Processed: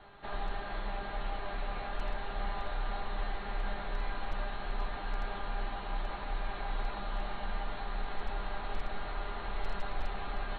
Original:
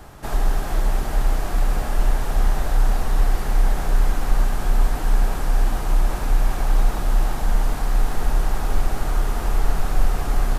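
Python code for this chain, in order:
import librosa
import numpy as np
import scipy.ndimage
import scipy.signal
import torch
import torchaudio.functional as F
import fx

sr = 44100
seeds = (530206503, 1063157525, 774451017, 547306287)

y = scipy.signal.sosfilt(scipy.signal.cheby1(10, 1.0, 4300.0, 'lowpass', fs=sr, output='sos'), x)
y = fx.low_shelf(y, sr, hz=460.0, db=-9.5)
y = fx.comb_fb(y, sr, f0_hz=200.0, decay_s=0.3, harmonics='all', damping=0.0, mix_pct=80)
y = 10.0 ** (-27.5 / 20.0) * (np.abs((y / 10.0 ** (-27.5 / 20.0) + 3.0) % 4.0 - 2.0) - 1.0)
y = y * 10.0 ** (3.0 / 20.0)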